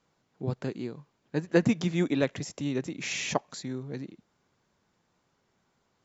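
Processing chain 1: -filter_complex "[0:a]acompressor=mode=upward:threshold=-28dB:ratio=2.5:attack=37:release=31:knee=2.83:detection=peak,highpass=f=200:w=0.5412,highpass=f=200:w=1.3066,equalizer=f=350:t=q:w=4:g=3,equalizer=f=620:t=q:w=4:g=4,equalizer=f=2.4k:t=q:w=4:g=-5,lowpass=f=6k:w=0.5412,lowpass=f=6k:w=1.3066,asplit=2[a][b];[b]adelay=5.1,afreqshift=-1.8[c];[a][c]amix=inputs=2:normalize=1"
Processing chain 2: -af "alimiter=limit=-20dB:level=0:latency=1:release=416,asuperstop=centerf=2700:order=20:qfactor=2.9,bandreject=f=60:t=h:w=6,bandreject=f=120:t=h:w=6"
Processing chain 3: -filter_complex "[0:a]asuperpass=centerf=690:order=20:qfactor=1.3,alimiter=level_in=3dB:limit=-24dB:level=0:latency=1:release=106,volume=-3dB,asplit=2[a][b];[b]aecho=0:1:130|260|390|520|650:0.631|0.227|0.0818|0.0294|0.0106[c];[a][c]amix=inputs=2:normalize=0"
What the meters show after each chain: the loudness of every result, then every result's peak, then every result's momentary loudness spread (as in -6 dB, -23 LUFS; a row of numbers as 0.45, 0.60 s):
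-32.0, -35.0, -44.0 LUFS; -12.0, -19.0, -26.5 dBFS; 19, 9, 12 LU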